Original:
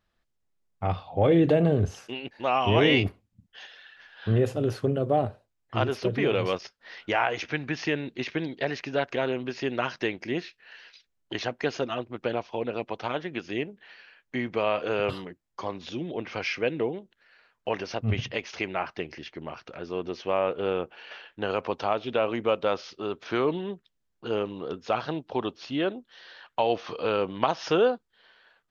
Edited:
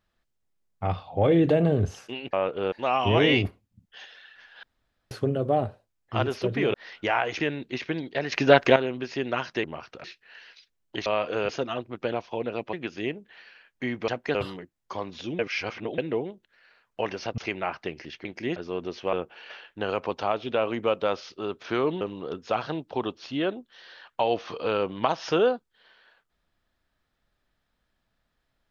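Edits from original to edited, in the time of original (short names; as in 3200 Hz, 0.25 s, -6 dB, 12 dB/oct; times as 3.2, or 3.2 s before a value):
4.24–4.72 room tone
6.35–6.79 cut
7.45–7.86 cut
8.78–9.22 gain +10.5 dB
10.1–10.41 swap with 19.38–19.78
11.43–11.7 swap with 14.6–15.03
12.94–13.25 cut
16.07–16.66 reverse
18.06–18.51 cut
20.35–20.74 move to 2.33
23.62–24.4 cut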